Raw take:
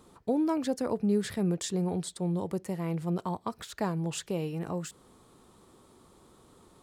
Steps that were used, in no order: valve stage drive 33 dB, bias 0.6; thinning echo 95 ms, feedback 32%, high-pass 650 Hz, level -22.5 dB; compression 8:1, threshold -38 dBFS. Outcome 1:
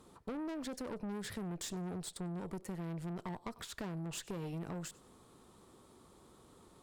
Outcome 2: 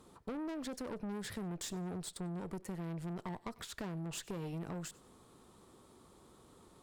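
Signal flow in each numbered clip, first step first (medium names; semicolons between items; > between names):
thinning echo > valve stage > compression; valve stage > thinning echo > compression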